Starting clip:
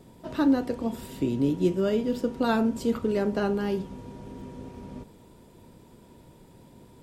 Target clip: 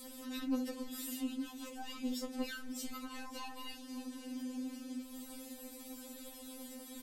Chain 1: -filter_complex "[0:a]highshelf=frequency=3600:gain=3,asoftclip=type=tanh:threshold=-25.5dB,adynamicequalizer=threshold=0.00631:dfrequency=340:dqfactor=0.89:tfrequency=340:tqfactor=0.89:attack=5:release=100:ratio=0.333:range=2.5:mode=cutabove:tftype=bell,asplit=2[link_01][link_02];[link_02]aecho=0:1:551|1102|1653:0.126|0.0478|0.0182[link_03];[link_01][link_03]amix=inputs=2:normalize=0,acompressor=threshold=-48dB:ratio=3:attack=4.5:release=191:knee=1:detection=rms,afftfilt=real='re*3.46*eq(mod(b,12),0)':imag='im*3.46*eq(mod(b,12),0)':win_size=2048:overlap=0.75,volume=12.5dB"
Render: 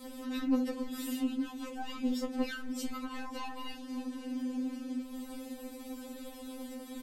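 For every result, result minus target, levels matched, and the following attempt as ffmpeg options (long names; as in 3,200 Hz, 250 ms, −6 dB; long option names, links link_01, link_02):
8,000 Hz band −7.0 dB; downward compressor: peak gain reduction −6 dB
-filter_complex "[0:a]highshelf=frequency=3600:gain=14.5,asoftclip=type=tanh:threshold=-25.5dB,adynamicequalizer=threshold=0.00631:dfrequency=340:dqfactor=0.89:tfrequency=340:tqfactor=0.89:attack=5:release=100:ratio=0.333:range=2.5:mode=cutabove:tftype=bell,asplit=2[link_01][link_02];[link_02]aecho=0:1:551|1102|1653:0.126|0.0478|0.0182[link_03];[link_01][link_03]amix=inputs=2:normalize=0,acompressor=threshold=-48dB:ratio=3:attack=4.5:release=191:knee=1:detection=rms,afftfilt=real='re*3.46*eq(mod(b,12),0)':imag='im*3.46*eq(mod(b,12),0)':win_size=2048:overlap=0.75,volume=12.5dB"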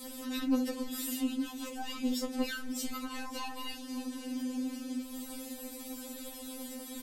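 downward compressor: peak gain reduction −6 dB
-filter_complex "[0:a]highshelf=frequency=3600:gain=14.5,asoftclip=type=tanh:threshold=-25.5dB,adynamicequalizer=threshold=0.00631:dfrequency=340:dqfactor=0.89:tfrequency=340:tqfactor=0.89:attack=5:release=100:ratio=0.333:range=2.5:mode=cutabove:tftype=bell,asplit=2[link_01][link_02];[link_02]aecho=0:1:551|1102|1653:0.126|0.0478|0.0182[link_03];[link_01][link_03]amix=inputs=2:normalize=0,acompressor=threshold=-57dB:ratio=3:attack=4.5:release=191:knee=1:detection=rms,afftfilt=real='re*3.46*eq(mod(b,12),0)':imag='im*3.46*eq(mod(b,12),0)':win_size=2048:overlap=0.75,volume=12.5dB"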